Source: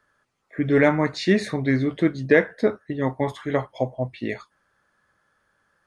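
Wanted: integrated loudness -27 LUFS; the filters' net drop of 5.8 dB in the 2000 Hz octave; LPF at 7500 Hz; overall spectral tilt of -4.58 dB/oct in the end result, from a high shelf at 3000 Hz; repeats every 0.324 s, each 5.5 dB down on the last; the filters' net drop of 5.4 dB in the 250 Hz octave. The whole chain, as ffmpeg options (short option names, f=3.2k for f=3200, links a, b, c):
-af "lowpass=7.5k,equalizer=f=250:t=o:g=-7,equalizer=f=2k:t=o:g=-5,highshelf=f=3k:g=-5.5,aecho=1:1:324|648|972|1296|1620|1944|2268:0.531|0.281|0.149|0.079|0.0419|0.0222|0.0118,volume=-1.5dB"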